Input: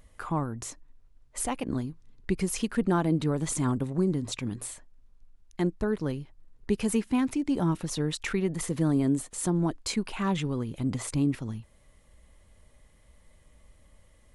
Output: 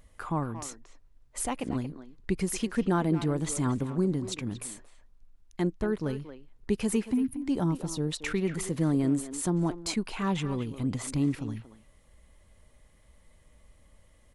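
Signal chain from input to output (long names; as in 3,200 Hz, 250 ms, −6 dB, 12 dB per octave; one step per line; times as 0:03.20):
0:07.14–0:07.42: gain on a spectral selection 290–8,900 Hz −23 dB
0:07.64–0:08.12: parametric band 2,000 Hz −11 dB 1.5 octaves
far-end echo of a speakerphone 230 ms, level −10 dB
level −1 dB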